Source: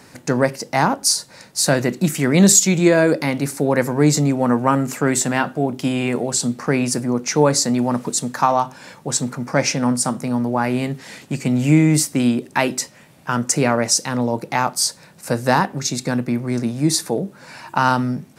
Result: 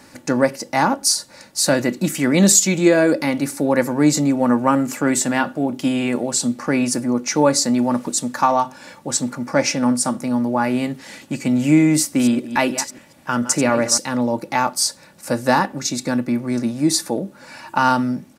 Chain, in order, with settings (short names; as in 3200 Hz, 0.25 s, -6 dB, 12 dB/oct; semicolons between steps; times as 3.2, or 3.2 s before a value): 11.99–13.99 reverse delay 0.142 s, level -11.5 dB; comb 3.5 ms, depth 45%; gain -1 dB